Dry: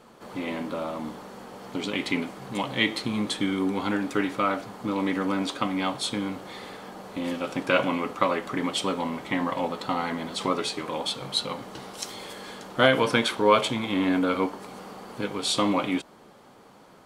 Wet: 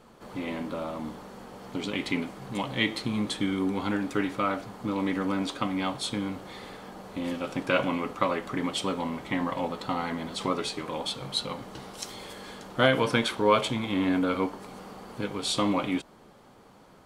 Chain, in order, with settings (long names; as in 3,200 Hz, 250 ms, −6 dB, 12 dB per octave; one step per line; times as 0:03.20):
low-shelf EQ 98 Hz +11 dB
level −3 dB